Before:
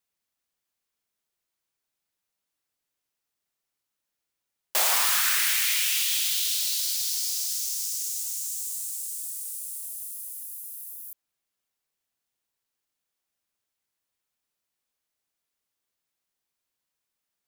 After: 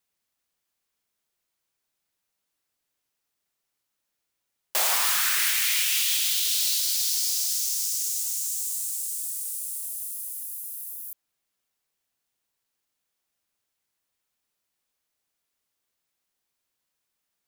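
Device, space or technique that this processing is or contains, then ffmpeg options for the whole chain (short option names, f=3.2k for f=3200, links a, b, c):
soft clipper into limiter: -af "asoftclip=type=tanh:threshold=-11.5dB,alimiter=limit=-17dB:level=0:latency=1:release=226,volume=3dB"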